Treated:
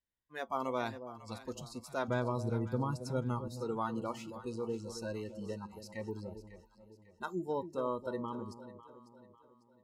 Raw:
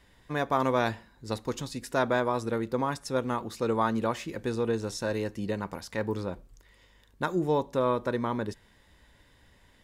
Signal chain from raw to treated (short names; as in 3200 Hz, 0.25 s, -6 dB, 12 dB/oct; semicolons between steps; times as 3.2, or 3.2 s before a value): 2.08–3.48 bell 110 Hz +12 dB 1.8 oct; spectral noise reduction 27 dB; echo with dull and thin repeats by turns 0.274 s, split 820 Hz, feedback 63%, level -10 dB; gain -9 dB